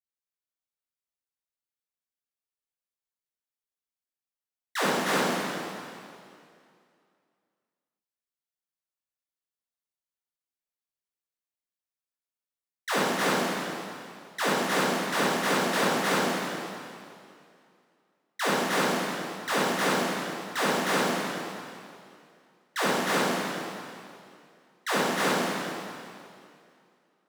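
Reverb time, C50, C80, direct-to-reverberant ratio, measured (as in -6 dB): 2.4 s, -4.0 dB, -2.0 dB, -10.5 dB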